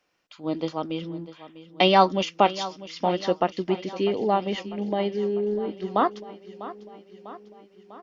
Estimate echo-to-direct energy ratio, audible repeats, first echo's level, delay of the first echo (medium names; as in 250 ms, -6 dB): -13.5 dB, 5, -15.5 dB, 648 ms